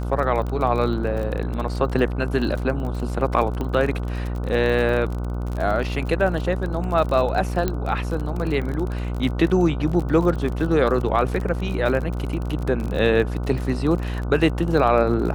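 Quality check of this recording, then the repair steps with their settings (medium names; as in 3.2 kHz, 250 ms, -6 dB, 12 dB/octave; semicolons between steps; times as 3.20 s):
buzz 60 Hz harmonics 25 -26 dBFS
crackle 33 per s -27 dBFS
3.61 s: pop -16 dBFS
7.68 s: pop -9 dBFS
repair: de-click; de-hum 60 Hz, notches 25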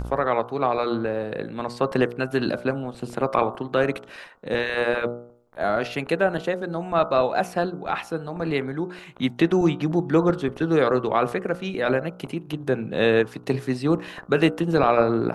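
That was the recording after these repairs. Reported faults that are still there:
3.61 s: pop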